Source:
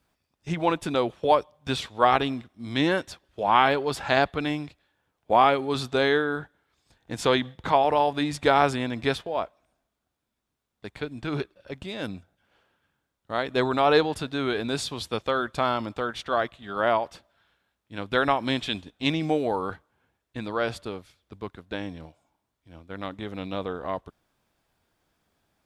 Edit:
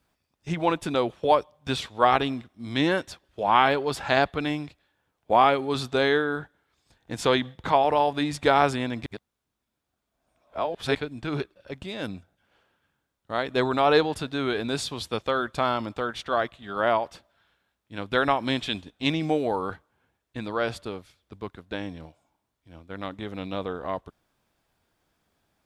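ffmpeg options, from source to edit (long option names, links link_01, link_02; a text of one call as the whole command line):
ffmpeg -i in.wav -filter_complex "[0:a]asplit=3[link_01][link_02][link_03];[link_01]atrim=end=9.062[link_04];[link_02]atrim=start=9.058:end=10.952,asetpts=PTS-STARTPTS,areverse[link_05];[link_03]atrim=start=10.948[link_06];[link_04][link_05]acrossfade=duration=0.004:curve1=hsin:curve2=hsin[link_07];[link_07][link_06]acrossfade=duration=0.004:curve1=hsin:curve2=hsin" out.wav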